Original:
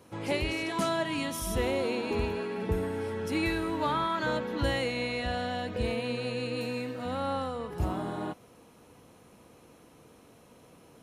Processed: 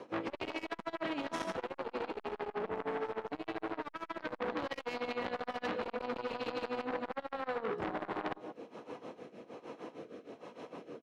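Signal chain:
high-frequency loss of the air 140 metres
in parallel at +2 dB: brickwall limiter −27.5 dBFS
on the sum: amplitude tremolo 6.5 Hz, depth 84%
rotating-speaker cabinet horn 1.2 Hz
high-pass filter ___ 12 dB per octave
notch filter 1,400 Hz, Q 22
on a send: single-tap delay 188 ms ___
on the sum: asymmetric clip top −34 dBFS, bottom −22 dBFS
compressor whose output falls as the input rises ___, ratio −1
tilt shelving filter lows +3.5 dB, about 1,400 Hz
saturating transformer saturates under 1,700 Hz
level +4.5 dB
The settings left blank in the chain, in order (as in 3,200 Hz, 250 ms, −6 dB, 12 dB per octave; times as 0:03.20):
350 Hz, −19.5 dB, −39 dBFS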